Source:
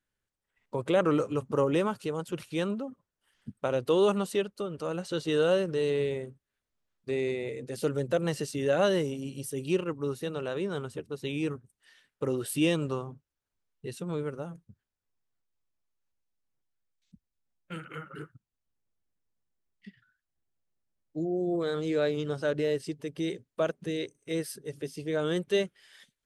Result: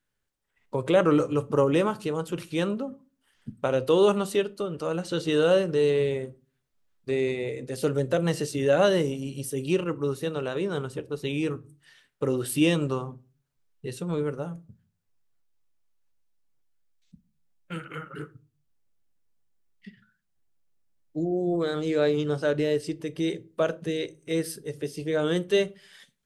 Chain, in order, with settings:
rectangular room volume 150 cubic metres, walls furnished, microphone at 0.32 metres
level +3.5 dB

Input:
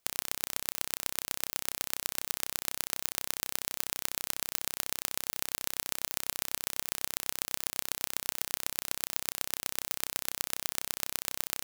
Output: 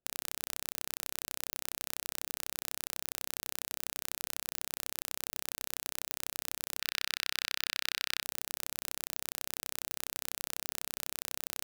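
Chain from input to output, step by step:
adaptive Wiener filter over 41 samples
0:06.80–0:08.23: flat-topped bell 2,600 Hz +14.5 dB 2.3 octaves
brickwall limiter −9 dBFS, peak gain reduction 10.5 dB

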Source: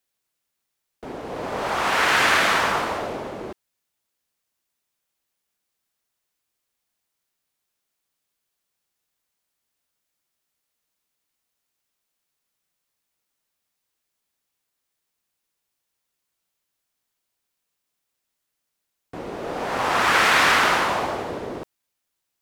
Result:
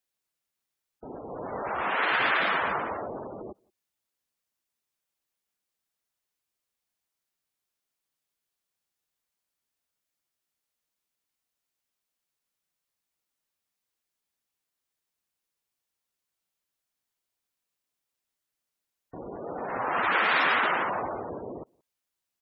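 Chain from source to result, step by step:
gate on every frequency bin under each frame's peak −15 dB strong
slap from a distant wall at 30 metres, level −30 dB
level −6 dB

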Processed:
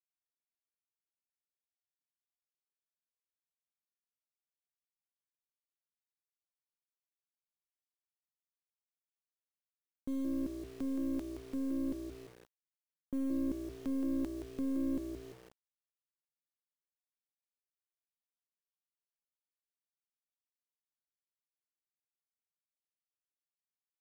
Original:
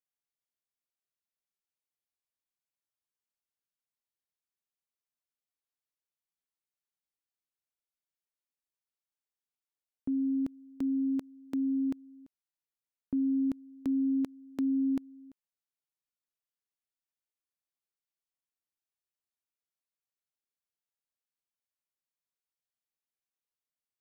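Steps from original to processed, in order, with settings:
gain on one half-wave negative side −7 dB
echo with shifted repeats 171 ms, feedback 34%, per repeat +60 Hz, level −8 dB
bit reduction 9 bits
level −3.5 dB

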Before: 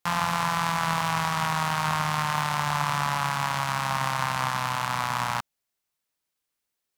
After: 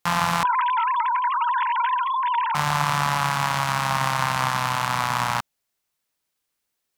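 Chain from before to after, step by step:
0:00.43–0:02.55: three sine waves on the formant tracks
level +4 dB

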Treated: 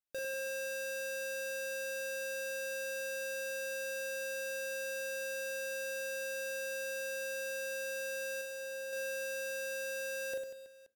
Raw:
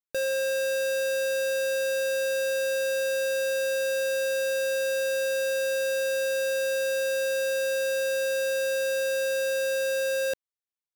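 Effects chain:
0:08.41–0:08.93: high-pass filter 130 Hz 24 dB per octave
soft clipping −33.5 dBFS, distortion −22 dB
reverse bouncing-ball delay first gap 40 ms, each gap 1.5×, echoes 5
feedback delay network reverb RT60 0.68 s, low-frequency decay 1.25×, high-frequency decay 0.95×, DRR 17.5 dB
level −4 dB

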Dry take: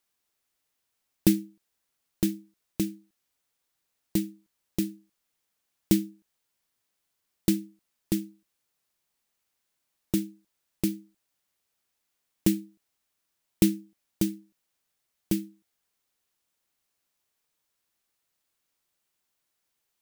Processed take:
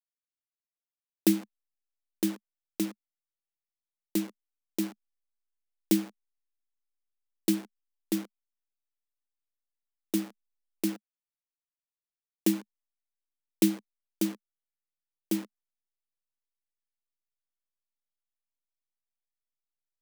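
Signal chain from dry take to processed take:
hold until the input has moved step −36 dBFS
elliptic high-pass filter 210 Hz, stop band 40 dB

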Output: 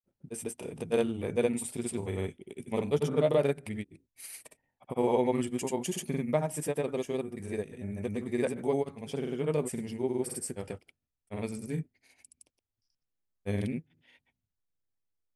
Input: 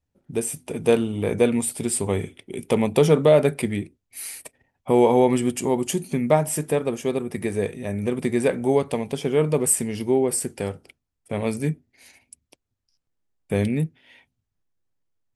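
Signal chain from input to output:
granular cloud 100 ms, grains 20 per second, pitch spread up and down by 0 semitones
level −8.5 dB

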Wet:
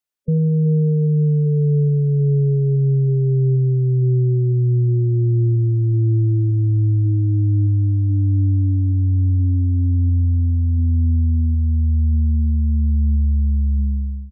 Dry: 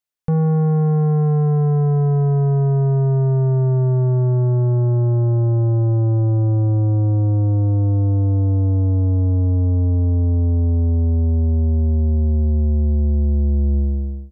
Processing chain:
gate on every frequency bin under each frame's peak −15 dB strong
slap from a distant wall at 35 metres, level −22 dB

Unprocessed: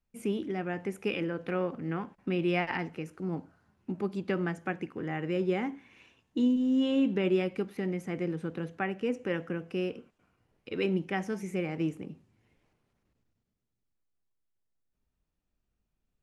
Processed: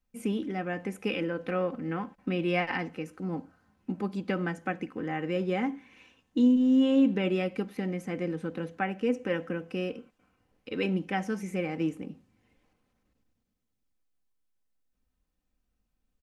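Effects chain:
comb filter 3.9 ms, depth 44%
level +1 dB

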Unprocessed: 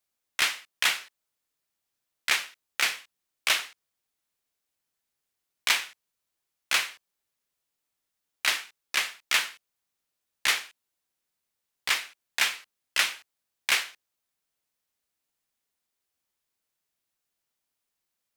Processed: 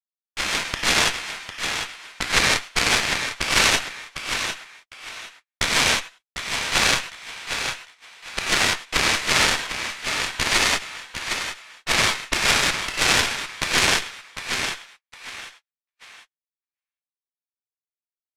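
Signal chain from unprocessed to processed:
reversed piece by piece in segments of 92 ms
automatic gain control gain up to 14.5 dB
on a send: repeating echo 752 ms, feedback 36%, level −6 dB
on the sum: reverb whose tail is shaped and stops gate 220 ms flat, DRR −7 dB
harmonic generator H 2 −7 dB, 3 −12 dB, 6 −34 dB, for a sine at 3 dBFS
low-pass filter 9,400 Hz 12 dB per octave
pitch-shifted copies added −12 semitones −11 dB, −7 semitones −10 dB
noise gate −47 dBFS, range −43 dB
boost into a limiter +1.5 dB
level −1 dB

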